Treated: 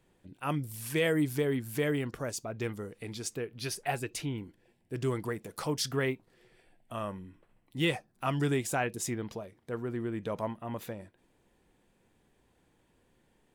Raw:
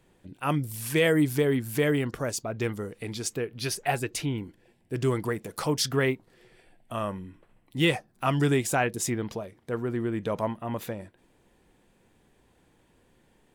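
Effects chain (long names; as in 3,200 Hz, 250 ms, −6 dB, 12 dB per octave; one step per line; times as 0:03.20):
on a send: linear-phase brick-wall high-pass 2,300 Hz + convolution reverb, pre-delay 3 ms, DRR 20.5 dB
on the sum: level −5.5 dB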